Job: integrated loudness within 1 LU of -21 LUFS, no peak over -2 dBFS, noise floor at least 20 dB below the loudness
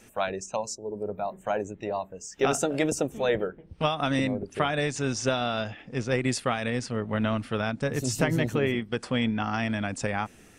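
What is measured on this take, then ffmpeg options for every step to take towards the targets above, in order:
loudness -28.5 LUFS; peak level -11.0 dBFS; loudness target -21.0 LUFS
-> -af "volume=2.37"

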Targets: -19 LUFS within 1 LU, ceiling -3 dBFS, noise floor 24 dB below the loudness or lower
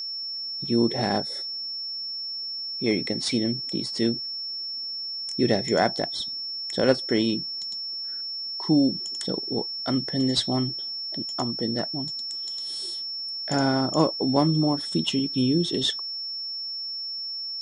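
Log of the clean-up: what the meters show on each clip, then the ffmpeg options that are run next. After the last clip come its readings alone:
steady tone 5.4 kHz; tone level -30 dBFS; loudness -26.0 LUFS; peak level -7.0 dBFS; loudness target -19.0 LUFS
-> -af "bandreject=f=5400:w=30"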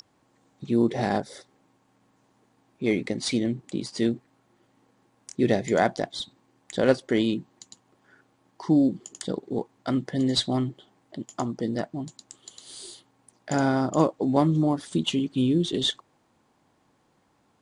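steady tone not found; loudness -26.0 LUFS; peak level -7.5 dBFS; loudness target -19.0 LUFS
-> -af "volume=2.24,alimiter=limit=0.708:level=0:latency=1"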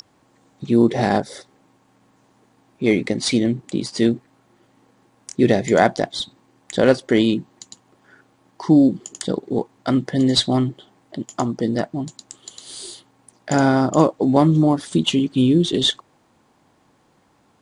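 loudness -19.0 LUFS; peak level -3.0 dBFS; noise floor -60 dBFS

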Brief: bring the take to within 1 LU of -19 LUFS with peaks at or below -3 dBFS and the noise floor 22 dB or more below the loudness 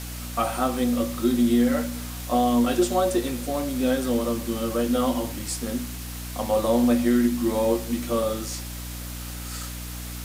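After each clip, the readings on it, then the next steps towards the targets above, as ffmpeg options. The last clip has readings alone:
hum 60 Hz; highest harmonic 300 Hz; hum level -32 dBFS; noise floor -35 dBFS; noise floor target -47 dBFS; loudness -25.0 LUFS; peak level -9.5 dBFS; loudness target -19.0 LUFS
-> -af "bandreject=f=60:t=h:w=4,bandreject=f=120:t=h:w=4,bandreject=f=180:t=h:w=4,bandreject=f=240:t=h:w=4,bandreject=f=300:t=h:w=4"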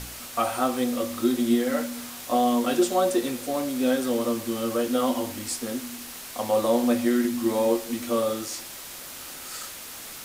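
hum not found; noise floor -40 dBFS; noise floor target -48 dBFS
-> -af "afftdn=nr=8:nf=-40"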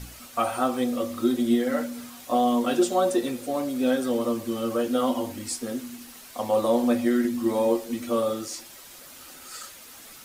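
noise floor -46 dBFS; noise floor target -48 dBFS
-> -af "afftdn=nr=6:nf=-46"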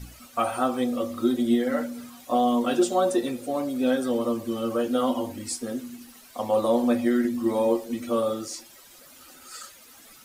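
noise floor -51 dBFS; loudness -25.5 LUFS; peak level -10.5 dBFS; loudness target -19.0 LUFS
-> -af "volume=2.11"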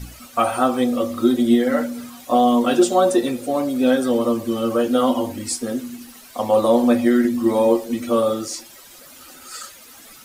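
loudness -19.0 LUFS; peak level -4.0 dBFS; noise floor -44 dBFS

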